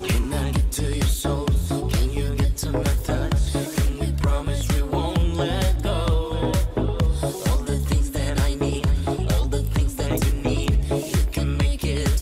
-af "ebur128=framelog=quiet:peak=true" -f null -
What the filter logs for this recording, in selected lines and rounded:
Integrated loudness:
  I:         -23.4 LUFS
  Threshold: -33.4 LUFS
Loudness range:
  LRA:         0.5 LU
  Threshold: -43.4 LUFS
  LRA low:   -23.6 LUFS
  LRA high:  -23.2 LUFS
True peak:
  Peak:      -11.9 dBFS